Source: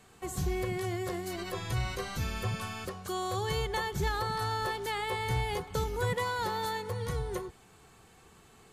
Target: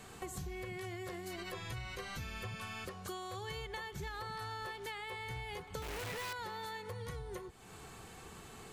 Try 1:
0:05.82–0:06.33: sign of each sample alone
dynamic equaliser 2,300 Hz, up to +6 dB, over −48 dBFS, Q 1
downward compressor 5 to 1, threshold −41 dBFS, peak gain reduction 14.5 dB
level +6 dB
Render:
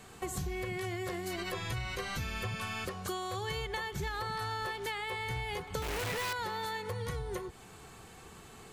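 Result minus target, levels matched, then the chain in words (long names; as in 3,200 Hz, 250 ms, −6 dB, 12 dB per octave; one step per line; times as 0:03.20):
downward compressor: peak gain reduction −6.5 dB
0:05.82–0:06.33: sign of each sample alone
dynamic equaliser 2,300 Hz, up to +6 dB, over −48 dBFS, Q 1
downward compressor 5 to 1, threshold −49 dBFS, peak gain reduction 21 dB
level +6 dB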